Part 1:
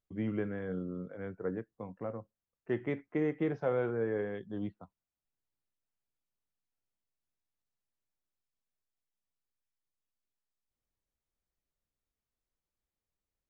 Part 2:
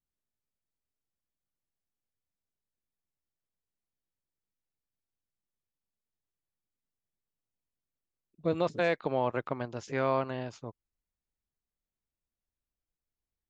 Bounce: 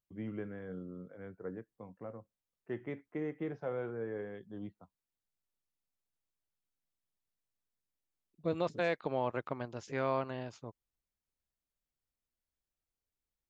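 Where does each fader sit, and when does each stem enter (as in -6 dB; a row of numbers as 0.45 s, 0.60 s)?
-6.5 dB, -4.5 dB; 0.00 s, 0.00 s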